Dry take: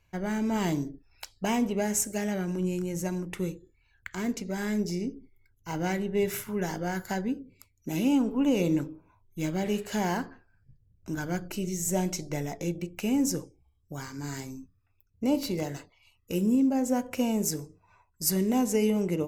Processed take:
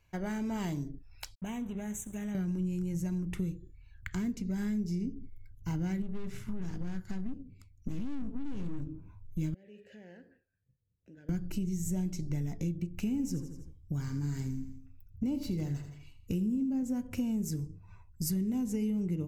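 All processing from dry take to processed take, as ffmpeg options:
ffmpeg -i in.wav -filter_complex "[0:a]asettb=1/sr,asplit=3[link_01][link_02][link_03];[link_01]atrim=end=1.354[link_04];[link_02]atrim=start=1.35:end=2.35,asetpts=PTS-STARTPTS,afade=type=in:duration=0.004:curve=qsin,afade=type=out:start_time=0.996:duration=0.004:curve=qsin,acompressor=threshold=-43dB:ratio=2:attack=3.2:release=140:knee=1:detection=peak,aeval=exprs='sgn(val(0))*max(abs(val(0))-0.00251,0)':channel_layout=same,asuperstop=centerf=4800:order=20:qfactor=2.5[link_05];[link_03]atrim=start=2.346[link_06];[link_04][link_05]acrossfade=duration=0.004:curve1=hsin:curve2=qsin[link_07];[link_07][link_06]acrossfade=duration=0.004:curve1=qsin:curve2=hsin,asettb=1/sr,asplit=3[link_08][link_09][link_10];[link_08]atrim=end=6.024[link_11];[link_09]atrim=start=6.02:end=8.87,asetpts=PTS-STARTPTS,afade=type=in:duration=0.004:curve=qsin,afade=type=out:start_time=2.846:duration=0.004:curve=qsin,acrossover=split=9700[link_12][link_13];[link_13]acompressor=threshold=-55dB:ratio=4:attack=1:release=60[link_14];[link_12][link_14]amix=inputs=2:normalize=0,aeval=exprs='(tanh(44.7*val(0)+0.75)-tanh(0.75))/44.7':channel_layout=same,highshelf=frequency=10000:gain=-10[link_15];[link_10]atrim=start=8.866[link_16];[link_11][link_15]acrossfade=duration=0.004:curve1=hsin:curve2=qsin[link_17];[link_17][link_16]acrossfade=duration=0.004:curve1=qsin:curve2=hsin,asettb=1/sr,asplit=3[link_18][link_19][link_20];[link_18]atrim=end=9.544[link_21];[link_19]atrim=start=9.54:end=11.29,asetpts=PTS-STARTPTS,afade=type=in:duration=0.004:curve=qsin,afade=type=out:start_time=1.746:duration=0.004:curve=qsin,acompressor=threshold=-42dB:ratio=2:attack=3.2:release=140:knee=1:detection=peak,asplit=3[link_22][link_23][link_24];[link_22]bandpass=frequency=530:width_type=q:width=8,volume=0dB[link_25];[link_23]bandpass=frequency=1840:width_type=q:width=8,volume=-6dB[link_26];[link_24]bandpass=frequency=2480:width_type=q:width=8,volume=-9dB[link_27];[link_25][link_26][link_27]amix=inputs=3:normalize=0[link_28];[link_20]atrim=start=11.286[link_29];[link_21][link_28]acrossfade=duration=0.004:curve1=hsin:curve2=qsin[link_30];[link_30][link_29]acrossfade=duration=0.004:curve1=qsin:curve2=hsin,asettb=1/sr,asplit=3[link_31][link_32][link_33];[link_31]atrim=end=12.934[link_34];[link_32]atrim=start=12.93:end=16.83,asetpts=PTS-STARTPTS,afade=type=in:duration=0.004:curve=qsin,afade=type=out:start_time=3.896:duration=0.004:curve=qsin,equalizer=frequency=11000:width=1.8:gain=-2.5,aecho=1:1:83|166|249|332:0.251|0.108|0.0464|0.02,atrim=end_sample=171990[link_35];[link_33]atrim=start=16.826[link_36];[link_34][link_35]acrossfade=duration=0.004:curve1=hsin:curve2=qsin[link_37];[link_37][link_36]acrossfade=duration=0.004:curve1=qsin:curve2=hsin,asubboost=boost=8.5:cutoff=200,acompressor=threshold=-31dB:ratio=4,volume=-1.5dB" out.wav

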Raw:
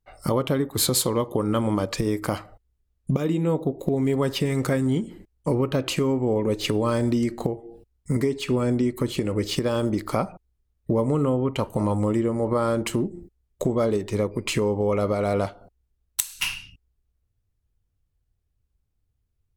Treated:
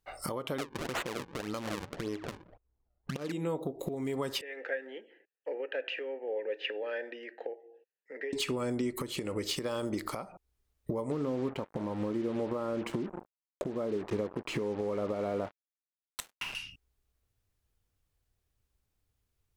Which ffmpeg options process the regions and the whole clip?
ffmpeg -i in.wav -filter_complex "[0:a]asettb=1/sr,asplit=3[link_01][link_02][link_03];[link_01]atrim=end=0.584[link_04];[link_02]atrim=start=0.58:end=3.32,asetpts=PTS-STARTPTS,afade=type=in:duration=0.004:curve=qsin,afade=type=out:start_time=2.736:duration=0.004:curve=qsin,acrusher=samples=38:mix=1:aa=0.000001:lfo=1:lforange=60.8:lforate=1.8,adynamicsmooth=sensitivity=4.5:basefreq=890[link_05];[link_03]atrim=start=3.316[link_06];[link_04][link_05]acrossfade=duration=0.004:curve1=hsin:curve2=qsin[link_07];[link_07][link_06]acrossfade=duration=0.004:curve1=qsin:curve2=hsin,asettb=1/sr,asplit=3[link_08][link_09][link_10];[link_08]atrim=end=4.414[link_11];[link_09]atrim=start=4.41:end=8.33,asetpts=PTS-STARTPTS,afade=type=in:duration=0.004:curve=qsin,afade=type=out:start_time=3.916:duration=0.004:curve=qsin,asplit=3[link_12][link_13][link_14];[link_12]bandpass=frequency=530:width_type=q:width=8,volume=0dB[link_15];[link_13]bandpass=frequency=1840:width_type=q:width=8,volume=-6dB[link_16];[link_14]bandpass=frequency=2480:width_type=q:width=8,volume=-9dB[link_17];[link_15][link_16][link_17]amix=inputs=3:normalize=0,highpass=frequency=310:width=0.5412,highpass=frequency=310:width=1.3066,equalizer=frequency=350:width_type=q:width=4:gain=-4,equalizer=frequency=560:width_type=q:width=4:gain=-9,equalizer=frequency=840:width_type=q:width=4:gain=7,equalizer=frequency=1600:width_type=q:width=4:gain=10,equalizer=frequency=2600:width_type=q:width=4:gain=5,equalizer=frequency=4300:width_type=q:width=4:gain=-7,lowpass=frequency=4700:width=0.5412,lowpass=frequency=4700:width=1.3066,bandreject=frequency=2500:width=24[link_18];[link_10]atrim=start=8.326[link_19];[link_11][link_18]acrossfade=duration=0.004:curve1=hsin:curve2=qsin[link_20];[link_20][link_19]acrossfade=duration=0.004:curve1=qsin:curve2=hsin,asettb=1/sr,asplit=3[link_21][link_22][link_23];[link_21]atrim=end=11.114[link_24];[link_22]atrim=start=11.11:end=16.55,asetpts=PTS-STARTPTS,afade=type=in:duration=0.004:curve=qsin,afade=type=out:start_time=5.436:duration=0.004:curve=qsin,equalizer=frequency=260:width=0.67:gain=6,acrusher=bits=4:mix=0:aa=0.5,lowpass=frequency=1200:poles=1[link_25];[link_23]atrim=start=16.546[link_26];[link_24][link_25]acrossfade=duration=0.004:curve1=hsin:curve2=qsin[link_27];[link_27][link_26]acrossfade=duration=0.004:curve1=qsin:curve2=hsin,lowshelf=frequency=260:gain=-11.5,acompressor=threshold=-33dB:ratio=6,alimiter=level_in=2.5dB:limit=-24dB:level=0:latency=1:release=474,volume=-2.5dB,volume=4.5dB" out.wav

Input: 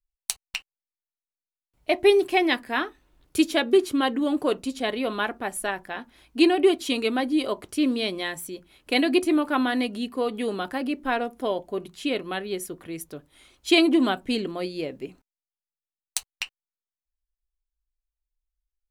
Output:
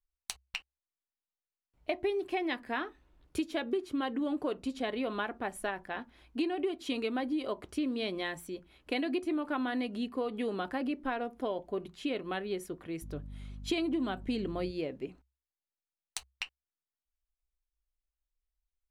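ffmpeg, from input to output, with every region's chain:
ffmpeg -i in.wav -filter_complex "[0:a]asettb=1/sr,asplit=3[link_01][link_02][link_03];[link_01]atrim=end=13.024[link_04];[link_02]atrim=start=13.02:end=14.71,asetpts=PTS-STARTPTS,afade=type=in:duration=0.004:curve=qsin,afade=type=out:start_time=1.686:duration=0.004:curve=qsin,bass=frequency=250:gain=5,treble=frequency=4000:gain=2,aeval=exprs='val(0)+0.01*(sin(2*PI*50*n/s)+sin(2*PI*2*50*n/s)/2+sin(2*PI*3*50*n/s)/3+sin(2*PI*4*50*n/s)/4+sin(2*PI*5*50*n/s)/5)':channel_layout=same[link_05];[link_03]atrim=start=14.706[link_06];[link_04][link_05]acrossfade=duration=0.004:curve1=hsin:curve2=qsin[link_07];[link_07][link_06]acrossfade=duration=0.004:curve1=qsin:curve2=hsin,lowpass=frequency=3000:poles=1,equalizer=frequency=65:width_type=o:width=0.23:gain=10.5,acompressor=threshold=-26dB:ratio=6,volume=-3.5dB" out.wav

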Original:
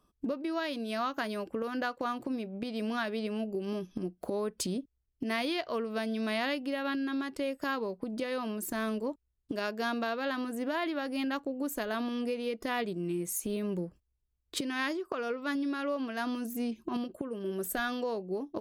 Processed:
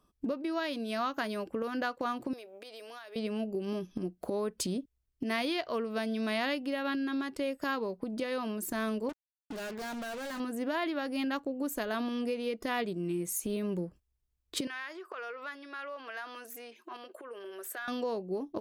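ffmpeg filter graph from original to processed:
ffmpeg -i in.wav -filter_complex "[0:a]asettb=1/sr,asplit=3[link_01][link_02][link_03];[link_01]atrim=end=2.334[link_04];[link_02]atrim=start=2.33:end=3.16,asetpts=PTS-STARTPTS,afade=type=in:duration=0.004:curve=qsin,afade=type=out:start_time=0.826:duration=0.004:curve=qsin,highpass=frequency=420:width=0.5412,highpass=frequency=420:width=1.3066,highshelf=frequency=5800:gain=8.5,acompressor=threshold=-44dB:ratio=6:attack=3.2:release=140:knee=1:detection=peak[link_05];[link_03]atrim=start=3.156[link_06];[link_04][link_05]acrossfade=duration=0.004:curve1=hsin:curve2=qsin[link_07];[link_07][link_06]acrossfade=duration=0.004:curve1=qsin:curve2=hsin,asettb=1/sr,asplit=3[link_08][link_09][link_10];[link_08]atrim=end=9.094[link_11];[link_09]atrim=start=9.09:end=10.4,asetpts=PTS-STARTPTS,afade=type=in:duration=0.004:curve=qsin,afade=type=out:start_time=1.306:duration=0.004:curve=qsin,acrusher=bits=6:mix=0:aa=0.5,asoftclip=type=hard:threshold=-37dB[link_12];[link_10]atrim=start=10.396[link_13];[link_11][link_12]acrossfade=duration=0.004:curve1=hsin:curve2=qsin[link_14];[link_14][link_13]acrossfade=duration=0.004:curve1=qsin:curve2=hsin,asettb=1/sr,asplit=3[link_15][link_16][link_17];[link_15]atrim=end=14.674[link_18];[link_16]atrim=start=14.67:end=17.88,asetpts=PTS-STARTPTS,afade=type=in:duration=0.004:curve=qsin,afade=type=out:start_time=3.206:duration=0.004:curve=qsin,equalizer=frequency=1700:width=0.73:gain=9.5,acompressor=threshold=-37dB:ratio=6:attack=3.2:release=140:knee=1:detection=peak,highpass=frequency=390:width=0.5412,highpass=frequency=390:width=1.3066[link_19];[link_17]atrim=start=17.876[link_20];[link_18][link_19]acrossfade=duration=0.004:curve1=hsin:curve2=qsin[link_21];[link_21][link_20]acrossfade=duration=0.004:curve1=qsin:curve2=hsin" out.wav

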